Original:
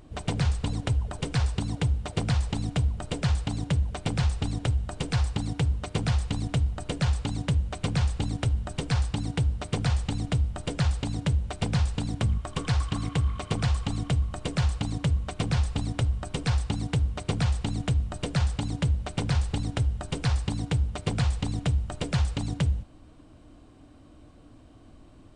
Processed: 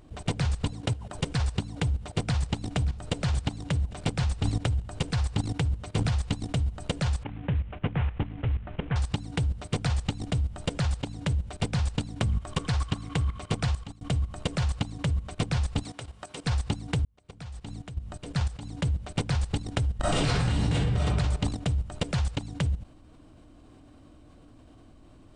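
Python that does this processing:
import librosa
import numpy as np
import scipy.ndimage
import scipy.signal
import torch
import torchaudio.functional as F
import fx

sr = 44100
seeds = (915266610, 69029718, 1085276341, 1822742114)

y = fx.highpass(x, sr, hz=fx.line((0.71, 61.0), (1.14, 150.0)), slope=12, at=(0.71, 1.14), fade=0.02)
y = fx.echo_throw(y, sr, start_s=1.84, length_s=1.09, ms=580, feedback_pct=55, wet_db=-15.0)
y = fx.peak_eq(y, sr, hz=100.0, db=4.0, octaves=0.37, at=(4.26, 6.24))
y = fx.cvsd(y, sr, bps=16000, at=(7.23, 8.96))
y = fx.highpass(y, sr, hz=590.0, slope=6, at=(15.82, 16.44), fade=0.02)
y = fx.reverb_throw(y, sr, start_s=19.96, length_s=1.02, rt60_s=1.3, drr_db=-11.5)
y = fx.edit(y, sr, fx.fade_out_span(start_s=13.61, length_s=0.4),
    fx.fade_in_span(start_s=17.05, length_s=2.0), tone=tone)
y = fx.level_steps(y, sr, step_db=14)
y = y * librosa.db_to_amplitude(3.5)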